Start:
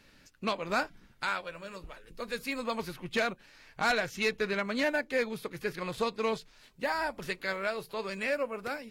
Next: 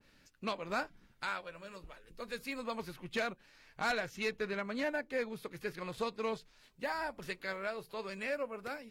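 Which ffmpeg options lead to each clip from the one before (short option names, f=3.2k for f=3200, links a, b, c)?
-af "adynamicequalizer=threshold=0.00891:dfrequency=2000:dqfactor=0.7:tfrequency=2000:tqfactor=0.7:attack=5:release=100:ratio=0.375:range=2.5:mode=cutabove:tftype=highshelf,volume=-5.5dB"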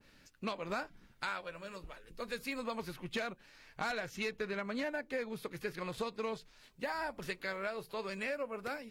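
-af "acompressor=threshold=-36dB:ratio=6,volume=2.5dB"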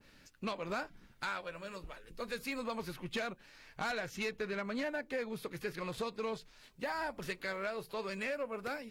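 -af "asoftclip=type=tanh:threshold=-29.5dB,volume=1.5dB"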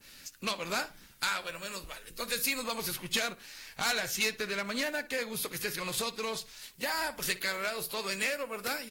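-filter_complex "[0:a]crystalizer=i=7:c=0,asplit=2[a][b];[b]adelay=60,lowpass=f=3.4k:p=1,volume=-16.5dB,asplit=2[c][d];[d]adelay=60,lowpass=f=3.4k:p=1,volume=0.3,asplit=2[e][f];[f]adelay=60,lowpass=f=3.4k:p=1,volume=0.3[g];[a][c][e][g]amix=inputs=4:normalize=0" -ar 44100 -c:a aac -b:a 64k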